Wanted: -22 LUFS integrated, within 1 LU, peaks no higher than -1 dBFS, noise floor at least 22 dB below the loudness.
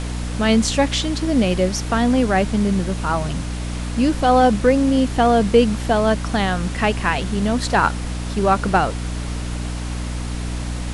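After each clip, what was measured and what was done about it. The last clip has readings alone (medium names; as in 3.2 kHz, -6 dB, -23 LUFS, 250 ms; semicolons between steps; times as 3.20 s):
hum 60 Hz; highest harmonic 300 Hz; hum level -24 dBFS; noise floor -26 dBFS; noise floor target -42 dBFS; loudness -19.5 LUFS; peak level -2.5 dBFS; loudness target -22.0 LUFS
-> hum notches 60/120/180/240/300 Hz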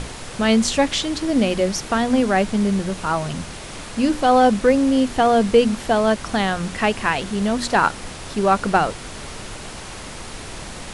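hum not found; noise floor -35 dBFS; noise floor target -41 dBFS
-> noise print and reduce 6 dB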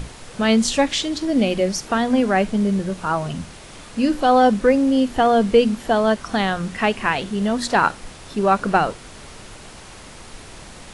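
noise floor -41 dBFS; noise floor target -42 dBFS
-> noise print and reduce 6 dB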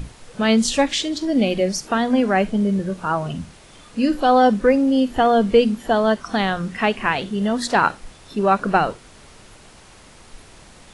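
noise floor -47 dBFS; loudness -19.5 LUFS; peak level -3.0 dBFS; loudness target -22.0 LUFS
-> trim -2.5 dB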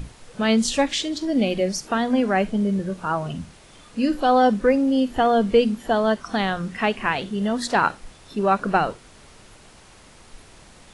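loudness -22.0 LUFS; peak level -5.5 dBFS; noise floor -49 dBFS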